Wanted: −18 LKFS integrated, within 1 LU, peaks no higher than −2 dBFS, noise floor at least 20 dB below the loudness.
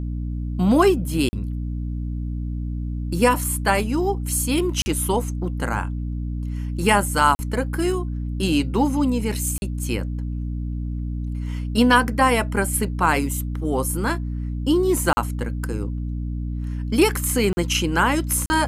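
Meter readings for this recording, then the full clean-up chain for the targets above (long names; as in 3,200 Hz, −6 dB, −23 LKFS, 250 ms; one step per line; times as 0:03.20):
number of dropouts 7; longest dropout 40 ms; mains hum 60 Hz; hum harmonics up to 300 Hz; level of the hum −24 dBFS; integrated loudness −22.5 LKFS; sample peak −2.0 dBFS; target loudness −18.0 LKFS
→ repair the gap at 0:01.29/0:04.82/0:07.35/0:09.58/0:15.13/0:17.53/0:18.46, 40 ms
hum removal 60 Hz, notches 5
level +4.5 dB
brickwall limiter −2 dBFS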